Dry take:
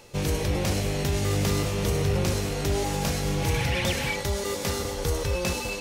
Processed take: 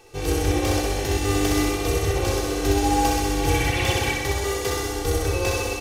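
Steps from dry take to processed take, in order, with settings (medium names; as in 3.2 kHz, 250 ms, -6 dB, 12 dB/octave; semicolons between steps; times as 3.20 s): peaking EQ 570 Hz +3 dB 2 oct; comb 2.6 ms, depth 84%; flutter echo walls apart 10.9 m, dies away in 1.4 s; upward expansion 1.5:1, over -25 dBFS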